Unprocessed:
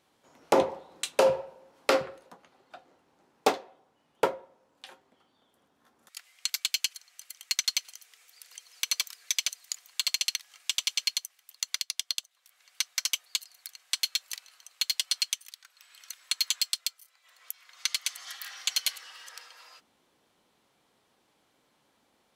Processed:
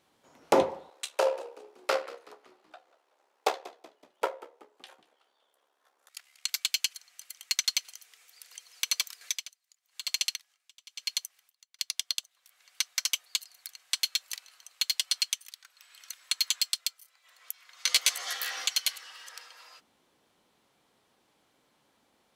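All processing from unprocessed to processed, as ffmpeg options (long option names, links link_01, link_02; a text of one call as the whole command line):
ffmpeg -i in.wav -filter_complex "[0:a]asettb=1/sr,asplit=3[link_01][link_02][link_03];[link_01]atrim=end=0.904[link_04];[link_02]atrim=start=0.9:end=6.49,asetpts=PTS-STARTPTS,afade=type=in:duration=0.004:curve=qsin,afade=type=out:start_time=5.586:duration=0.004:curve=qsin,highpass=frequency=450:width=0.5412,highpass=frequency=450:width=1.3066,tremolo=f=70:d=0.621,asplit=5[link_05][link_06][link_07][link_08][link_09];[link_06]adelay=188,afreqshift=-55,volume=-18.5dB[link_10];[link_07]adelay=376,afreqshift=-110,volume=-25.4dB[link_11];[link_08]adelay=564,afreqshift=-165,volume=-32.4dB[link_12];[link_09]adelay=752,afreqshift=-220,volume=-39.3dB[link_13];[link_05][link_10][link_11][link_12][link_13]amix=inputs=5:normalize=0,atrim=end_sample=246519[link_14];[link_03]atrim=start=6.486[link_15];[link_04][link_14]acrossfade=duration=0.004:curve1=hsin:curve2=qsin[link_16];[link_16][link_15]acrossfade=duration=0.004:curve1=qsin:curve2=hsin,asettb=1/sr,asplit=3[link_17][link_18][link_19];[link_17]atrim=end=9.214[link_20];[link_18]atrim=start=9.21:end=11.79,asetpts=PTS-STARTPTS,afade=type=in:duration=0.004:curve=qsin,afade=type=out:start_time=2.576:duration=0.004:curve=qsin,acompressor=mode=upward:threshold=-43dB:ratio=2.5:attack=3.2:release=140:knee=2.83:detection=peak,aeval=exprs='val(0)*pow(10,-29*(0.5-0.5*cos(2*PI*1*n/s))/20)':channel_layout=same[link_21];[link_19]atrim=start=11.786[link_22];[link_20][link_21]acrossfade=duration=0.004:curve1=hsin:curve2=qsin[link_23];[link_23][link_22]acrossfade=duration=0.004:curve1=qsin:curve2=hsin,asettb=1/sr,asplit=3[link_24][link_25][link_26];[link_24]atrim=end=17.864[link_27];[link_25]atrim=start=17.86:end=18.67,asetpts=PTS-STARTPTS,afade=type=in:duration=0.004:curve=qsin,afade=type=out:start_time=0.806:duration=0.004:curve=qsin,equalizer=frequency=440:width_type=o:width=1.2:gain=12.5,acontrast=24,asplit=2[link_28][link_29];[link_29]adelay=14,volume=-2dB[link_30];[link_28][link_30]amix=inputs=2:normalize=0,atrim=end_sample=35721[link_31];[link_26]atrim=start=18.666[link_32];[link_27][link_31]acrossfade=duration=0.004:curve1=hsin:curve2=qsin[link_33];[link_33][link_32]acrossfade=duration=0.004:curve1=qsin:curve2=hsin" out.wav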